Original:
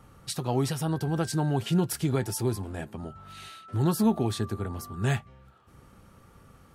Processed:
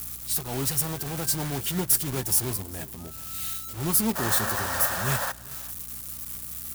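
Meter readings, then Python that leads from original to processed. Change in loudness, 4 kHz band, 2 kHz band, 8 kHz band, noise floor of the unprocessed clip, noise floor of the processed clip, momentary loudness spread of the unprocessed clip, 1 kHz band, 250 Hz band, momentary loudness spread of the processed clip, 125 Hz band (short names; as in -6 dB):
+3.0 dB, +5.5 dB, +8.0 dB, +12.0 dB, -56 dBFS, -40 dBFS, 14 LU, +2.5 dB, -4.5 dB, 12 LU, -4.5 dB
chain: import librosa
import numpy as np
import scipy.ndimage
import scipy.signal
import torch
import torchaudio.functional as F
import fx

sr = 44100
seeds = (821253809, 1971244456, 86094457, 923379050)

p1 = x + 0.5 * 10.0 ** (-24.5 / 20.0) * np.diff(np.sign(x), prepend=np.sign(x[:1]))
p2 = fx.spec_paint(p1, sr, seeds[0], shape='noise', start_s=4.15, length_s=1.17, low_hz=500.0, high_hz=1900.0, level_db=-28.0)
p3 = (np.mod(10.0 ** (27.5 / 20.0) * p2 + 1.0, 2.0) - 1.0) / 10.0 ** (27.5 / 20.0)
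p4 = p2 + F.gain(torch.from_numpy(p3), -3.5).numpy()
p5 = fx.transient(p4, sr, attack_db=-8, sustain_db=-4)
p6 = fx.high_shelf(p5, sr, hz=7400.0, db=11.5)
p7 = fx.add_hum(p6, sr, base_hz=60, snr_db=17)
p8 = p7 + 10.0 ** (-18.0 / 20.0) * np.pad(p7, (int(391 * sr / 1000.0), 0))[:len(p7)]
y = fx.upward_expand(p8, sr, threshold_db=-32.0, expansion=1.5)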